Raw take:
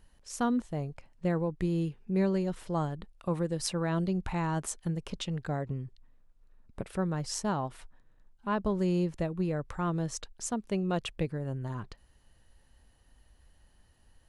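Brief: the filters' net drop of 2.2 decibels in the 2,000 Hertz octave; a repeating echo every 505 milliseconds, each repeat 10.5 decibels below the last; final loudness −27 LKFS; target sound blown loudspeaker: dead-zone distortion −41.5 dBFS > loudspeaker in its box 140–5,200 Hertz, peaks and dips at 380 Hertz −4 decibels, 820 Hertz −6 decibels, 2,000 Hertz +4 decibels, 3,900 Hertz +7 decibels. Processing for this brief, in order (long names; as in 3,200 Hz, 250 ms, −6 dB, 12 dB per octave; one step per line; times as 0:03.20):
parametric band 2,000 Hz −5 dB
repeating echo 505 ms, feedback 30%, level −10.5 dB
dead-zone distortion −41.5 dBFS
loudspeaker in its box 140–5,200 Hz, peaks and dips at 380 Hz −4 dB, 820 Hz −6 dB, 2,000 Hz +4 dB, 3,900 Hz +7 dB
level +9.5 dB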